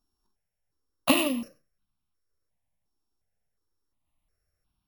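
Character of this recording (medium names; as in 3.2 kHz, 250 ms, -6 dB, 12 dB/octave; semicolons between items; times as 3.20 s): a buzz of ramps at a fixed pitch in blocks of 8 samples; notches that jump at a steady rate 2.8 Hz 550–1900 Hz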